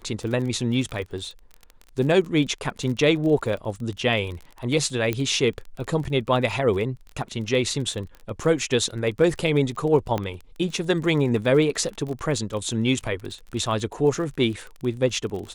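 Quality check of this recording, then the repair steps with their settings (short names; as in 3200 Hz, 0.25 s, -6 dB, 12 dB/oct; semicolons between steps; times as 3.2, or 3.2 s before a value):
crackle 28/s -31 dBFS
5.13 pop -12 dBFS
10.18 pop -13 dBFS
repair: de-click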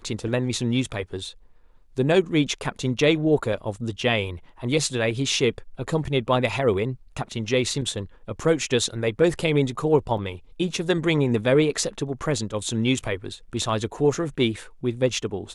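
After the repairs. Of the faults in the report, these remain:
10.18 pop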